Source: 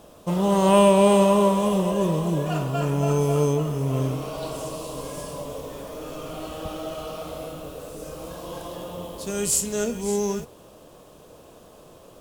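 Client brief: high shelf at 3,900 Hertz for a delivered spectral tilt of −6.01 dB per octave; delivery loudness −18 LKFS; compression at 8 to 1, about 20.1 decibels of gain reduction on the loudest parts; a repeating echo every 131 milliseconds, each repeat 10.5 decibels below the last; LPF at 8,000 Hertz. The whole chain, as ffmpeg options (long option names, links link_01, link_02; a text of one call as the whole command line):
ffmpeg -i in.wav -af "lowpass=8000,highshelf=frequency=3900:gain=-8,acompressor=threshold=-34dB:ratio=8,aecho=1:1:131|262|393:0.299|0.0896|0.0269,volume=20dB" out.wav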